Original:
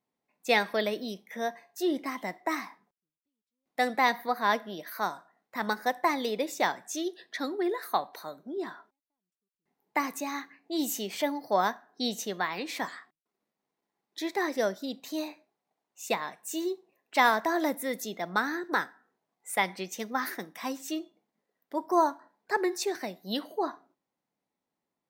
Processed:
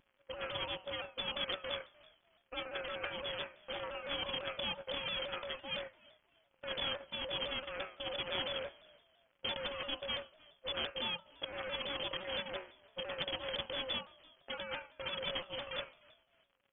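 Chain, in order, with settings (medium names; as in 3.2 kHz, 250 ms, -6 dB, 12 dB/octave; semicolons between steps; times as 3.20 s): sorted samples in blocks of 16 samples; differentiator; de-hum 101.1 Hz, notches 29; compressor with a negative ratio -41 dBFS, ratio -1; crackle 210 per s -66 dBFS; tempo 1.5×; wavefolder -30 dBFS; frequency-shifting echo 300 ms, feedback 34%, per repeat -61 Hz, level -23 dB; frequency inversion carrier 3.3 kHz; vibrato with a chosen wave saw down 5.9 Hz, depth 100 cents; trim +12 dB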